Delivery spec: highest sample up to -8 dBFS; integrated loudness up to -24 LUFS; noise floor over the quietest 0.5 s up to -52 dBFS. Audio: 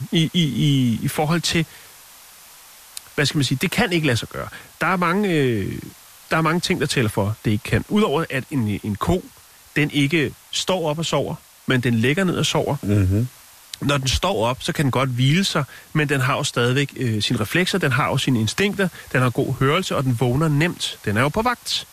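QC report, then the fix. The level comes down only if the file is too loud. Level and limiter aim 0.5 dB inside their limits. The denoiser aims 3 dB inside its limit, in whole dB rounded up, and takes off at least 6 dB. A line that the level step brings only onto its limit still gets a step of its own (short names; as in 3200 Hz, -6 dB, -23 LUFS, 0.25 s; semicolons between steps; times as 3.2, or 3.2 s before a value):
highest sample -6.5 dBFS: fail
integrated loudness -20.5 LUFS: fail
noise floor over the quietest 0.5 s -47 dBFS: fail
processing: denoiser 6 dB, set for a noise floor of -47 dBFS; gain -4 dB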